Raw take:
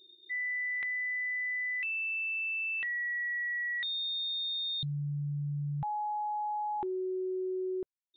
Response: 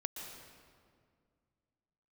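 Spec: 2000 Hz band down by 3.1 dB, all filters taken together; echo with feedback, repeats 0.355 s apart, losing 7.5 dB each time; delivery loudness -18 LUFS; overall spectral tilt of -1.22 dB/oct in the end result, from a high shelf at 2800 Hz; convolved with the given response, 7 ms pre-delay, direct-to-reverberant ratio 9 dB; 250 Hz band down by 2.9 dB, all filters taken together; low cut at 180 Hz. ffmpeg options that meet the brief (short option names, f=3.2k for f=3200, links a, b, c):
-filter_complex "[0:a]highpass=180,equalizer=f=250:t=o:g=-3.5,equalizer=f=2k:t=o:g=-7,highshelf=f=2.8k:g=8,aecho=1:1:355|710|1065|1420|1775:0.422|0.177|0.0744|0.0312|0.0131,asplit=2[a][b];[1:a]atrim=start_sample=2205,adelay=7[c];[b][c]afir=irnorm=-1:irlink=0,volume=-8.5dB[d];[a][d]amix=inputs=2:normalize=0,volume=16dB"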